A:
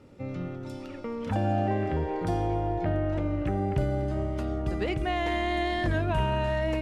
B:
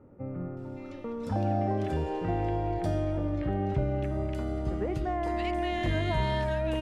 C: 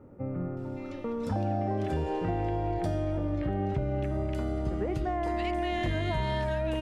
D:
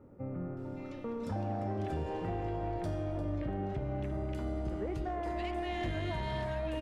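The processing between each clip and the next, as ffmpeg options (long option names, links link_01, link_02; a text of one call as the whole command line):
ffmpeg -i in.wav -filter_complex "[0:a]acrossover=split=1600[link_01][link_02];[link_02]adelay=570[link_03];[link_01][link_03]amix=inputs=2:normalize=0,volume=-1.5dB" out.wav
ffmpeg -i in.wav -af "acompressor=threshold=-30dB:ratio=3,volume=3dB" out.wav
ffmpeg -i in.wav -af "asoftclip=type=tanh:threshold=-23dB,flanger=delay=2.9:depth=9.3:regen=-87:speed=1.2:shape=triangular,aecho=1:1:349:0.237" out.wav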